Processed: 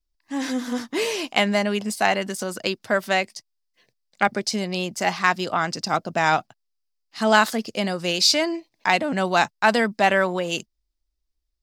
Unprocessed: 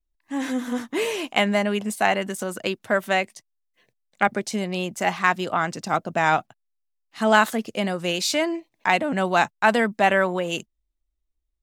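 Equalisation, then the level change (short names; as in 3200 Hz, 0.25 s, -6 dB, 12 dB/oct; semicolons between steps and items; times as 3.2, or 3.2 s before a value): bell 4900 Hz +12 dB 0.52 oct; 0.0 dB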